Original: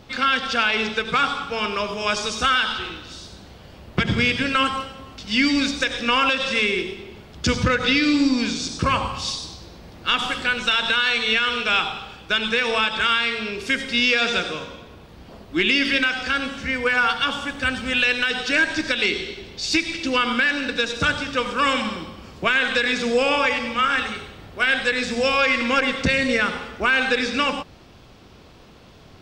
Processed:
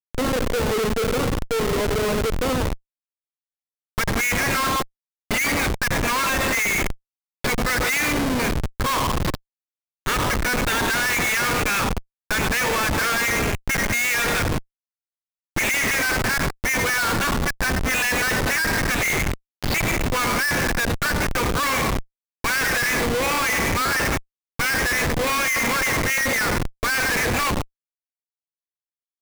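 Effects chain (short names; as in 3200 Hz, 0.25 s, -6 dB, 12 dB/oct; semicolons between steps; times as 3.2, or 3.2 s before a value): ripple EQ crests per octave 0.94, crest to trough 9 dB; band-pass sweep 470 Hz -> 1700 Hz, 2.48–4.33; Schmitt trigger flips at -32.5 dBFS; gain +7.5 dB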